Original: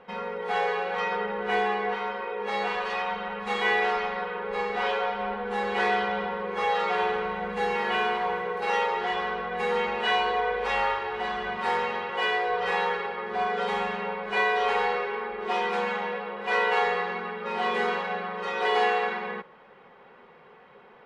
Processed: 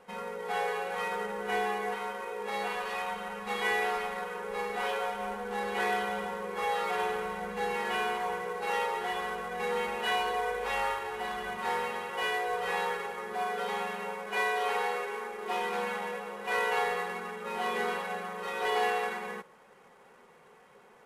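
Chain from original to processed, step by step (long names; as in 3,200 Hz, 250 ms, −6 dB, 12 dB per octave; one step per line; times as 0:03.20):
variable-slope delta modulation 64 kbit/s
0:13.33–0:15.51: low-shelf EQ 110 Hz −10.5 dB
level −5 dB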